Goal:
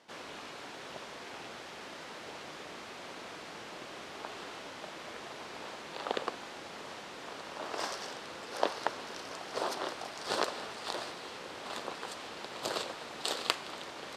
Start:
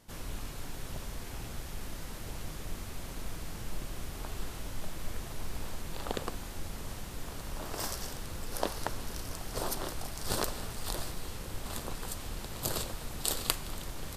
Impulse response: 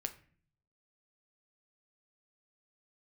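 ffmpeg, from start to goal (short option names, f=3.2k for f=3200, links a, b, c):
-af "highpass=390,lowpass=4.3k,volume=4dB"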